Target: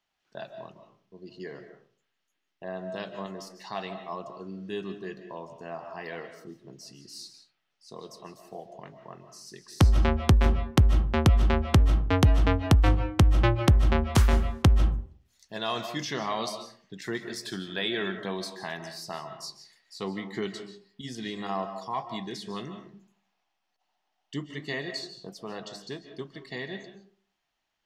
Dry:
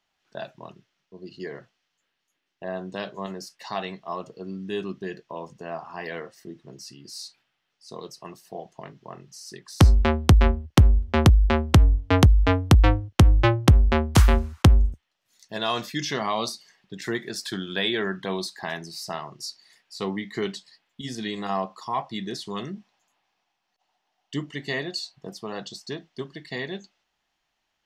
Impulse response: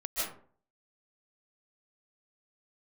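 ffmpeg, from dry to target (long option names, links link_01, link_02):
-filter_complex "[0:a]asplit=2[link_01][link_02];[1:a]atrim=start_sample=2205,highshelf=frequency=7300:gain=-8.5[link_03];[link_02][link_03]afir=irnorm=-1:irlink=0,volume=-11.5dB[link_04];[link_01][link_04]amix=inputs=2:normalize=0,volume=-6dB"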